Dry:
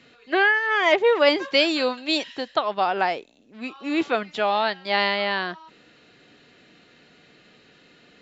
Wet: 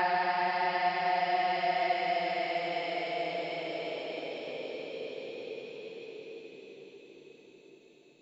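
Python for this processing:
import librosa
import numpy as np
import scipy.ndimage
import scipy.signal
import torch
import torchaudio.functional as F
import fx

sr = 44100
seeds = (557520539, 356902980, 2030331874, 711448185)

y = fx.hum_notches(x, sr, base_hz=50, count=3)
y = fx.paulstretch(y, sr, seeds[0], factor=43.0, window_s=0.1, from_s=3.06)
y = y * 10.0 ** (-7.0 / 20.0)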